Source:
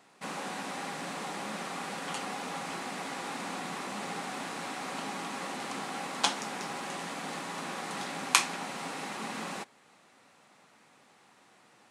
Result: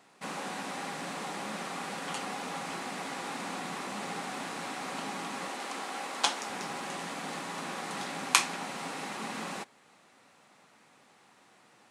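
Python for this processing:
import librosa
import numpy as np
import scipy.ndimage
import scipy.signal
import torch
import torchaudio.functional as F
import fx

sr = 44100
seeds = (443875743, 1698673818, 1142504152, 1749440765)

y = fx.highpass(x, sr, hz=300.0, slope=12, at=(5.48, 6.5))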